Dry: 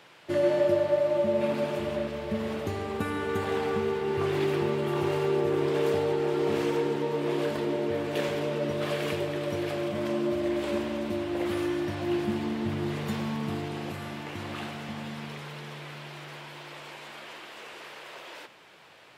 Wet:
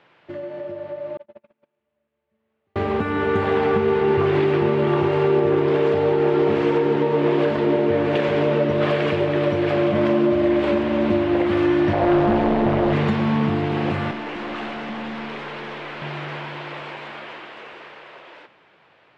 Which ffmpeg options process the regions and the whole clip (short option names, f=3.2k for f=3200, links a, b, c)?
-filter_complex "[0:a]asettb=1/sr,asplit=3[a][b][c];[a]atrim=end=1.174[d];[b]atrim=start=1.17:end=2.76,asetpts=PTS-STARTPTS,afade=t=in:d=0.004:c=qsin,afade=t=out:st=1.586:d=0.004:c=qsin,bandreject=f=50:t=h:w=6,bandreject=f=100:t=h:w=6,bandreject=f=150:t=h:w=6,bandreject=f=200:t=h:w=6,bandreject=f=250:t=h:w=6,bandreject=f=300:t=h:w=6,bandreject=f=350:t=h:w=6,bandreject=f=400:t=h:w=6,agate=range=-52dB:threshold=-22dB:ratio=16:release=100:detection=peak,equalizer=f=2.6k:w=0.42:g=5[e];[c]atrim=start=2.756[f];[d][e]acrossfade=d=0.004:c1=hsin:c2=qsin[g];[g][f]acrossfade=d=0.004:c1=qsin:c2=hsin,asettb=1/sr,asplit=3[h][i][j];[h]atrim=end=11.934[k];[i]atrim=start=11.93:end=12.93,asetpts=PTS-STARTPTS,afade=t=in:d=0.004:c=qsin,afade=t=out:st=0.996:d=0.004:c=qsin,equalizer=f=630:t=o:w=1:g=13,tremolo=f=200:d=0.788,volume=25.5dB,asoftclip=hard,volume=-25.5dB[l];[j]atrim=start=12.926[m];[k][l]acrossfade=d=0.004:c1=hsin:c2=qsin[n];[n][m]acrossfade=d=0.004:c1=qsin:c2=hsin,asettb=1/sr,asplit=3[o][p][q];[o]atrim=end=14.114[r];[p]atrim=start=14.11:end=16.02,asetpts=PTS-STARTPTS,afade=t=in:d=0.004:c=qsin,afade=t=out:st=1.906:d=0.004:c=qsin,highpass=f=210:w=0.5412,highpass=f=210:w=1.3066,aeval=exprs='(tanh(89.1*val(0)+0.15)-tanh(0.15))/89.1':c=same[s];[q]atrim=start=16.016[t];[r][s]acrossfade=d=0.004:c1=hsin:c2=qsin[u];[u][t]acrossfade=d=0.004:c1=qsin:c2=hsin,alimiter=limit=-23dB:level=0:latency=1:release=395,dynaudnorm=f=280:g=17:m=15dB,lowpass=2.7k,volume=-1.5dB"